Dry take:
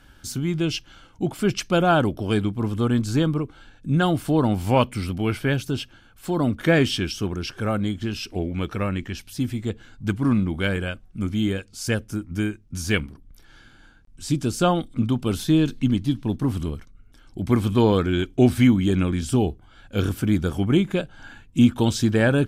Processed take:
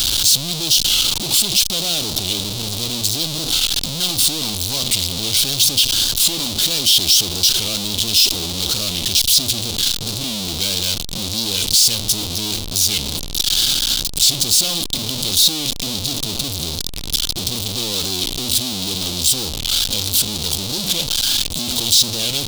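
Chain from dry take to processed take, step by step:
sign of each sample alone
high shelf with overshoot 2,600 Hz +13.5 dB, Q 3
wow of a warped record 45 rpm, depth 100 cents
level −5 dB

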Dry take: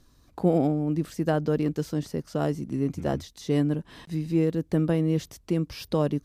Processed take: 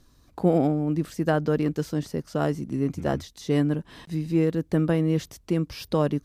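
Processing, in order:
dynamic equaliser 1,500 Hz, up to +4 dB, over −40 dBFS, Q 1
level +1 dB

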